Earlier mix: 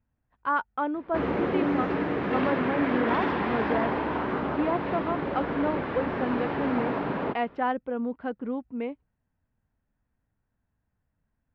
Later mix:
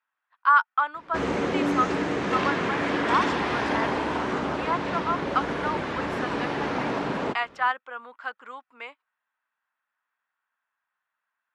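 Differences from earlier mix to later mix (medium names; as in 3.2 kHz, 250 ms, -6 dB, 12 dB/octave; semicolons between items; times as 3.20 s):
speech: add resonant high-pass 1.2 kHz, resonance Q 2.5; master: remove distance through air 370 m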